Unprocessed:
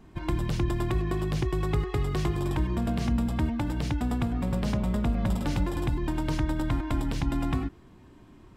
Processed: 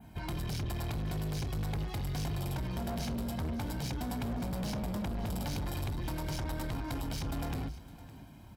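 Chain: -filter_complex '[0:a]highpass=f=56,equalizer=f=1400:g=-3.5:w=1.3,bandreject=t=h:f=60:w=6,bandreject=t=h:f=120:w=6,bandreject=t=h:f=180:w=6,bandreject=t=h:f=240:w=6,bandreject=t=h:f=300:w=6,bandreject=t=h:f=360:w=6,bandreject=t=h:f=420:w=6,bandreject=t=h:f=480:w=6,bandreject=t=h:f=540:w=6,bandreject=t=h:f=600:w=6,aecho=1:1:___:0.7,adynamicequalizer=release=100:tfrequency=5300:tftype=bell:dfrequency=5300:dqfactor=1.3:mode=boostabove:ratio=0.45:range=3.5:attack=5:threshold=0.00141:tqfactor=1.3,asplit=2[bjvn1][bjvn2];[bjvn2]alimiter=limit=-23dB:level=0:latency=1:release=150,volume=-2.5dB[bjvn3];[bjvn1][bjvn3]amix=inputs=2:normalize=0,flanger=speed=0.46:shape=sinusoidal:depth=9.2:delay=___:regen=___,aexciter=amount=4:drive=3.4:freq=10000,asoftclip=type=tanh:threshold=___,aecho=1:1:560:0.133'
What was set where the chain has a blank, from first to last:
1.3, 4.2, 81, -32.5dB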